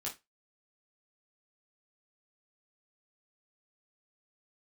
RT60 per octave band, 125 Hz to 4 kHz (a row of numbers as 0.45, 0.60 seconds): 0.25, 0.20, 0.20, 0.20, 0.20, 0.20 seconds